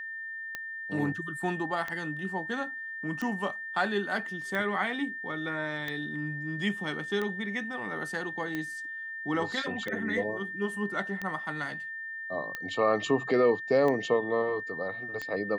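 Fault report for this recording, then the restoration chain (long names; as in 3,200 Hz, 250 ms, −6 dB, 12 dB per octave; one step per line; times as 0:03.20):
scratch tick 45 rpm −20 dBFS
whistle 1,800 Hz −36 dBFS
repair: click removal
notch filter 1,800 Hz, Q 30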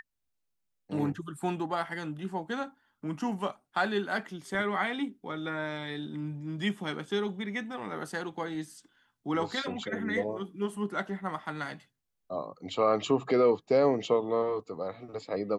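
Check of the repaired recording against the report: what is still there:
none of them is left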